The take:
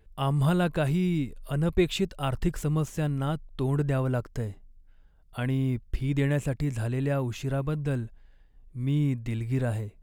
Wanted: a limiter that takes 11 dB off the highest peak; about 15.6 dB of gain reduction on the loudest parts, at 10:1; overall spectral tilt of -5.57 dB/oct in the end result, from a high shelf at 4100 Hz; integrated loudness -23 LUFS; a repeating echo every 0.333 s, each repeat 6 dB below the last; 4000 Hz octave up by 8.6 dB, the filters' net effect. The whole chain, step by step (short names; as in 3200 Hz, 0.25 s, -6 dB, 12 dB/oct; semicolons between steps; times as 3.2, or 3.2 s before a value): bell 4000 Hz +7 dB; high shelf 4100 Hz +7.5 dB; compressor 10:1, threshold -34 dBFS; limiter -33.5 dBFS; feedback echo 0.333 s, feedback 50%, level -6 dB; gain +19 dB